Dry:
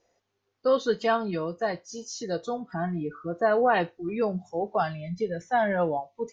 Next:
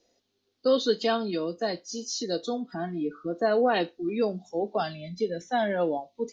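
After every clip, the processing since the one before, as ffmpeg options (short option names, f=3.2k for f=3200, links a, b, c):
-filter_complex "[0:a]equalizer=f=125:t=o:w=1:g=-6,equalizer=f=250:t=o:w=1:g=9,equalizer=f=1k:t=o:w=1:g=-6,equalizer=f=2k:t=o:w=1:g=-4,equalizer=f=4k:t=o:w=1:g=10,acrossover=split=250[a][b];[a]acompressor=threshold=-42dB:ratio=6[c];[c][b]amix=inputs=2:normalize=0"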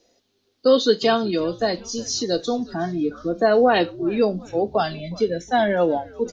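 -filter_complex "[0:a]asplit=5[a][b][c][d][e];[b]adelay=365,afreqshift=-110,volume=-21.5dB[f];[c]adelay=730,afreqshift=-220,volume=-27.2dB[g];[d]adelay=1095,afreqshift=-330,volume=-32.9dB[h];[e]adelay=1460,afreqshift=-440,volume=-38.5dB[i];[a][f][g][h][i]amix=inputs=5:normalize=0,volume=7dB"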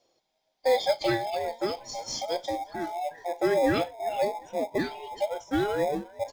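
-filter_complex "[0:a]afftfilt=real='real(if(between(b,1,1008),(2*floor((b-1)/48)+1)*48-b,b),0)':imag='imag(if(between(b,1,1008),(2*floor((b-1)/48)+1)*48-b,b),0)*if(between(b,1,1008),-1,1)':win_size=2048:overlap=0.75,asplit=2[a][b];[b]acrusher=samples=30:mix=1:aa=0.000001,volume=-11.5dB[c];[a][c]amix=inputs=2:normalize=0,volume=-8.5dB"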